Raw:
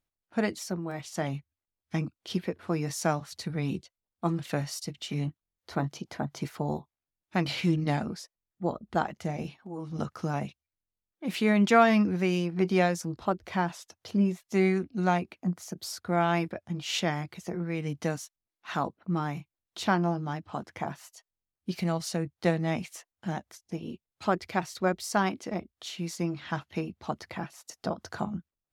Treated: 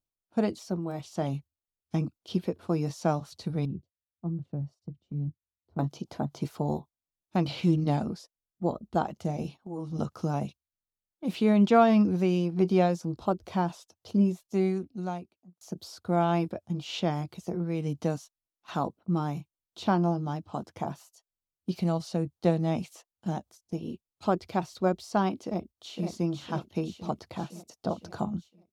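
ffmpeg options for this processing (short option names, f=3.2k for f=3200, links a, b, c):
-filter_complex "[0:a]asettb=1/sr,asplit=3[a][b][c];[a]atrim=end=3.654[d];[b]atrim=start=3.65:end=5.79,asetpts=PTS-STARTPTS,afade=t=in:d=0.004:c=qsin,afade=t=out:st=2.136:d=0.004:c=qsin,bandpass=f=100:t=q:w=1[e];[c]atrim=start=5.786[f];[d][e]acrossfade=d=0.004:c1=hsin:c2=qsin[g];[g][f]acrossfade=d=0.004:c1=qsin:c2=hsin,asplit=2[h][i];[i]afade=t=in:st=25.45:d=0.01,afade=t=out:st=26.07:d=0.01,aecho=0:1:510|1020|1530|2040|2550|3060|3570|4080:0.530884|0.318531|0.191118|0.114671|0.0688026|0.0412816|0.0247689|0.0148614[j];[h][j]amix=inputs=2:normalize=0,asplit=2[k][l];[k]atrim=end=15.61,asetpts=PTS-STARTPTS,afade=t=out:st=14.14:d=1.47[m];[l]atrim=start=15.61,asetpts=PTS-STARTPTS,afade=t=in:d=0.004:c=hsin[n];[m][n]concat=n=2:v=0:a=1,agate=range=-7dB:threshold=-46dB:ratio=16:detection=peak,acrossover=split=4100[o][p];[p]acompressor=threshold=-53dB:ratio=4:attack=1:release=60[q];[o][q]amix=inputs=2:normalize=0,equalizer=f=1.9k:t=o:w=0.95:g=-13.5,volume=2dB"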